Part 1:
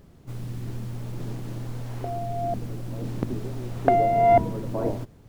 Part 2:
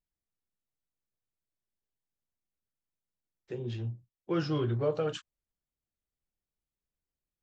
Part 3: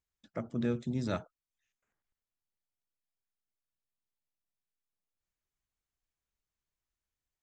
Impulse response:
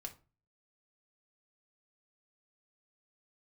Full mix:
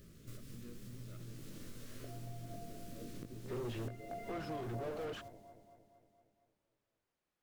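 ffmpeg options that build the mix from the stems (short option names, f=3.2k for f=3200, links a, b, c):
-filter_complex "[0:a]highshelf=f=3.1k:g=10.5,flanger=delay=17.5:depth=3.9:speed=0.85,volume=-3.5dB,asplit=2[a][b];[b]volume=-21dB[c];[1:a]asplit=2[d][e];[e]highpass=f=720:p=1,volume=36dB,asoftclip=type=tanh:threshold=-17.5dB[f];[d][f]amix=inputs=2:normalize=0,lowpass=f=1.1k:p=1,volume=-6dB,volume=-14.5dB[g];[2:a]asoftclip=type=tanh:threshold=-29.5dB,volume=-15.5dB,asplit=2[h][i];[i]apad=whole_len=232884[j];[a][j]sidechaincompress=threshold=-54dB:ratio=8:attack=5.8:release=730[k];[k][h]amix=inputs=2:normalize=0,asuperstop=centerf=830:order=4:qfactor=1.5,acompressor=threshold=-46dB:ratio=3,volume=0dB[l];[c]aecho=0:1:231|462|693|924|1155|1386|1617|1848|2079:1|0.58|0.336|0.195|0.113|0.0656|0.0381|0.0221|0.0128[m];[g][l][m]amix=inputs=3:normalize=0,alimiter=level_in=8.5dB:limit=-24dB:level=0:latency=1:release=436,volume=-8.5dB"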